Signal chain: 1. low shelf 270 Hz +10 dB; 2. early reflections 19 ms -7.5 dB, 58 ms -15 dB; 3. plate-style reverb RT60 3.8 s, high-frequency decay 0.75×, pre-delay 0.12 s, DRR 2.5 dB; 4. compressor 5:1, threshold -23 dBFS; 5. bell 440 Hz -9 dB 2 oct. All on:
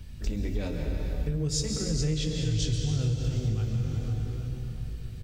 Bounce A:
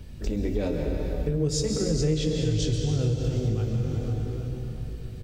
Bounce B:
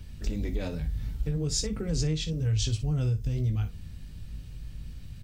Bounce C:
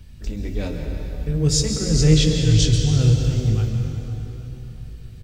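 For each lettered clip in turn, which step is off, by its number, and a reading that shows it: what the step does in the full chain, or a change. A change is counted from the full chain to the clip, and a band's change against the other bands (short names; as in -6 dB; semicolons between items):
5, 500 Hz band +7.5 dB; 3, momentary loudness spread change +8 LU; 4, crest factor change +3.5 dB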